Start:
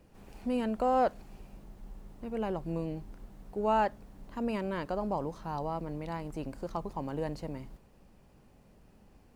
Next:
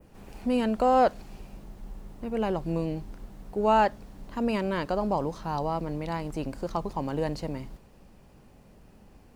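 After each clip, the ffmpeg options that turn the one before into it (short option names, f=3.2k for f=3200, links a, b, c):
-af "adynamicequalizer=threshold=0.002:dfrequency=4500:dqfactor=0.84:tfrequency=4500:tqfactor=0.84:attack=5:release=100:ratio=0.375:range=2:mode=boostabove:tftype=bell,volume=5.5dB"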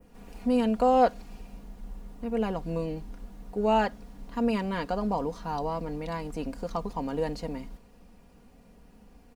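-af "aecho=1:1:4.2:0.59,volume=-2.5dB"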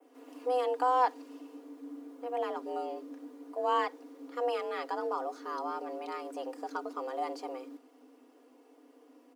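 -af "afreqshift=250,volume=-5.5dB"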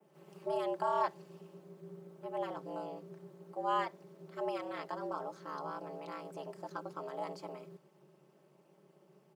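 -af "aeval=exprs='val(0)*sin(2*PI*110*n/s)':c=same,volume=-2.5dB"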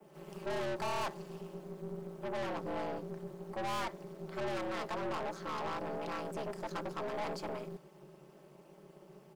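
-af "aeval=exprs='(tanh(158*val(0)+0.5)-tanh(0.5))/158':c=same,volume=10dB"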